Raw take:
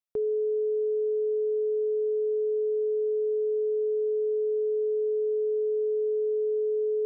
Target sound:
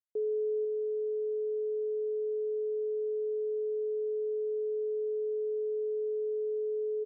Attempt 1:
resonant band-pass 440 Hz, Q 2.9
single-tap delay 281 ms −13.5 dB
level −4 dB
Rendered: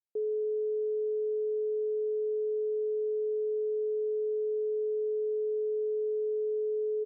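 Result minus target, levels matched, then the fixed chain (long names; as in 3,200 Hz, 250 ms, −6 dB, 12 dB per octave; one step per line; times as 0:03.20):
echo 213 ms early
resonant band-pass 440 Hz, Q 2.9
single-tap delay 494 ms −13.5 dB
level −4 dB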